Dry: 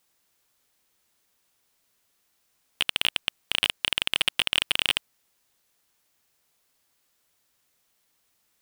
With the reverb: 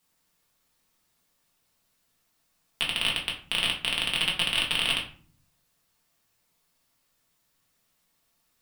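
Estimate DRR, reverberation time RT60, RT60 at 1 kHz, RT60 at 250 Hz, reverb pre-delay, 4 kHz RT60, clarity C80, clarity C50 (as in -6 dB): -3.0 dB, 0.45 s, 0.45 s, 0.85 s, 4 ms, 0.30 s, 13.0 dB, 8.5 dB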